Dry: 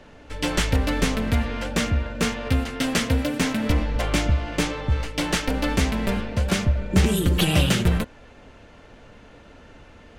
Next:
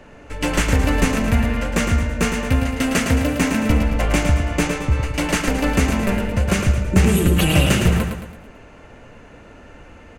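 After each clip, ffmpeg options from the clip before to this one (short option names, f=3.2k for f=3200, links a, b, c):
-filter_complex "[0:a]superequalizer=13b=0.447:14b=0.562,asplit=2[a][b];[b]aecho=0:1:110|220|330|440|550:0.501|0.221|0.097|0.0427|0.0188[c];[a][c]amix=inputs=2:normalize=0,volume=3.5dB"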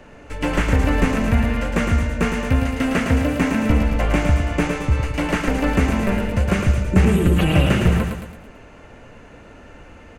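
-filter_complex "[0:a]acrossover=split=2700[a][b];[b]acompressor=threshold=-37dB:ratio=4:attack=1:release=60[c];[a][c]amix=inputs=2:normalize=0"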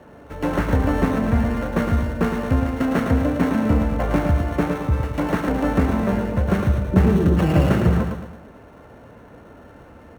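-filter_complex "[0:a]acrossover=split=230|2000[a][b][c];[c]acrusher=samples=18:mix=1:aa=0.000001[d];[a][b][d]amix=inputs=3:normalize=0,highpass=63"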